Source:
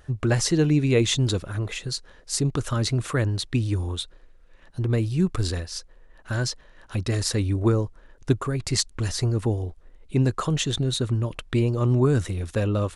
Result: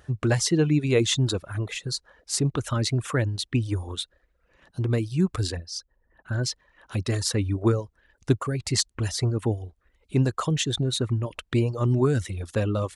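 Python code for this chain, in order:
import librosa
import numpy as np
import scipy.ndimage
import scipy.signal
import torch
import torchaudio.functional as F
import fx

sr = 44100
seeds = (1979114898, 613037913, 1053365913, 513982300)

y = fx.envelope_sharpen(x, sr, power=1.5, at=(5.55, 6.43), fade=0.02)
y = fx.dereverb_blind(y, sr, rt60_s=0.69)
y = scipy.signal.sosfilt(scipy.signal.butter(2, 60.0, 'highpass', fs=sr, output='sos'), y)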